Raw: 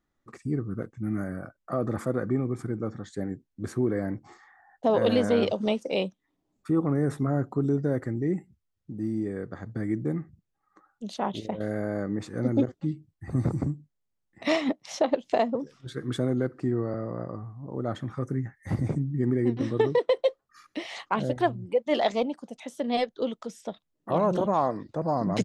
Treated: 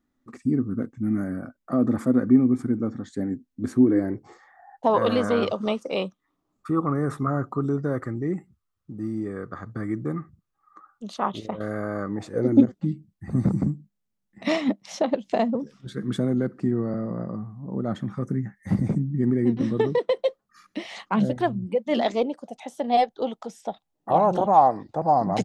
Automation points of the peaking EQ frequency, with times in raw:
peaking EQ +14.5 dB 0.4 oct
3.78 s 250 Hz
5.07 s 1.2 kHz
12.05 s 1.2 kHz
12.67 s 200 Hz
21.93 s 200 Hz
22.55 s 790 Hz

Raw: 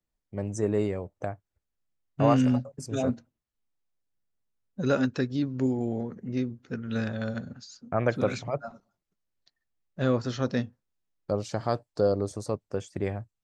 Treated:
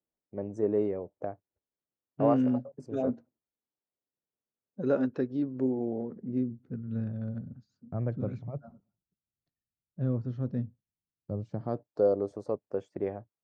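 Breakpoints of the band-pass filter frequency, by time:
band-pass filter, Q 0.89
5.98 s 420 Hz
6.84 s 120 Hz
11.41 s 120 Hz
12.00 s 480 Hz

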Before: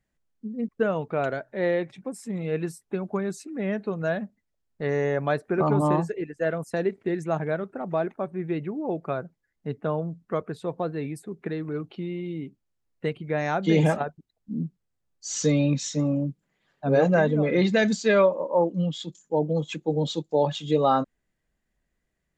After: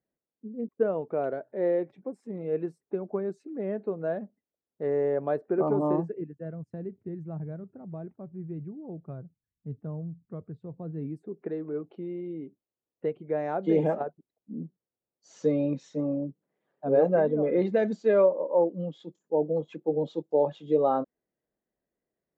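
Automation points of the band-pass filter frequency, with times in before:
band-pass filter, Q 1.2
5.88 s 430 Hz
6.52 s 100 Hz
10.78 s 100 Hz
11.38 s 460 Hz

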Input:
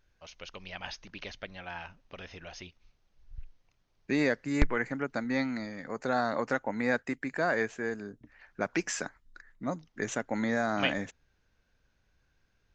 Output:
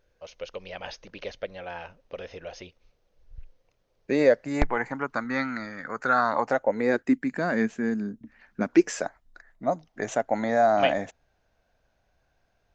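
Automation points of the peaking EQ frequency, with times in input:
peaking EQ +14.5 dB 0.7 oct
4.19 s 510 Hz
5.42 s 1.4 kHz
6.10 s 1.4 kHz
7.24 s 220 Hz
8.61 s 220 Hz
9.06 s 680 Hz

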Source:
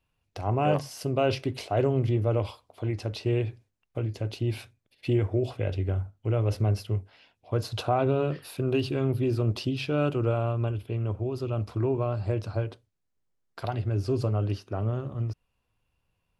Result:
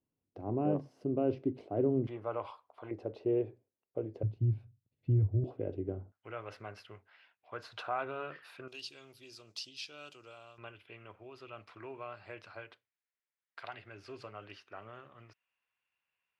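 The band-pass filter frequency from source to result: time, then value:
band-pass filter, Q 1.8
290 Hz
from 2.07 s 1.1 kHz
from 2.91 s 450 Hz
from 4.23 s 120 Hz
from 5.44 s 340 Hz
from 6.12 s 1.6 kHz
from 8.68 s 5.7 kHz
from 10.58 s 2 kHz

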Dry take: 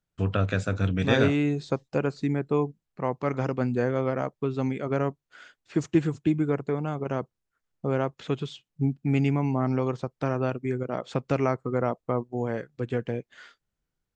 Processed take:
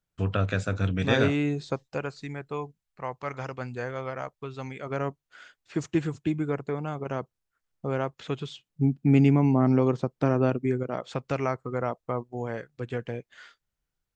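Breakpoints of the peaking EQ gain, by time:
peaking EQ 250 Hz 2.3 oct
1.61 s -2 dB
2.22 s -13.5 dB
4.68 s -13.5 dB
5.09 s -4 dB
8.42 s -4 dB
9.08 s +5.5 dB
10.59 s +5.5 dB
11.10 s -5.5 dB

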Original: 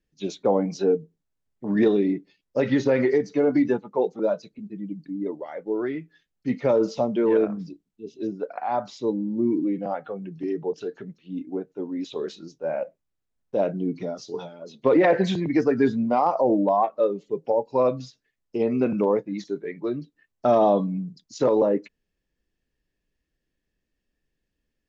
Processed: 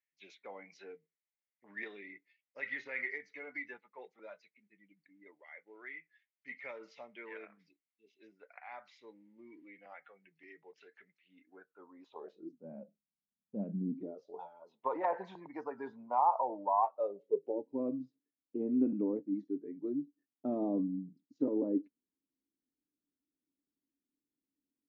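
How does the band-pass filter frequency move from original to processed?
band-pass filter, Q 6.6
11.32 s 2.1 kHz
12.22 s 830 Hz
12.60 s 210 Hz
13.89 s 210 Hz
14.46 s 930 Hz
16.89 s 930 Hz
17.67 s 280 Hz

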